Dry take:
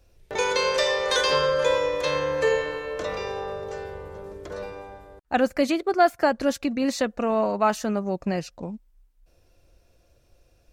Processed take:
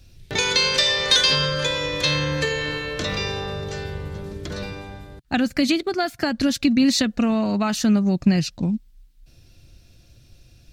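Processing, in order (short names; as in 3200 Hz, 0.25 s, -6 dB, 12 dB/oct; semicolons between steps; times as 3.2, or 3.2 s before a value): compressor 4:1, threshold -23 dBFS, peak gain reduction 9 dB; graphic EQ 125/250/500/1000/4000 Hz +9/+4/-10/-7/+7 dB; gain +8 dB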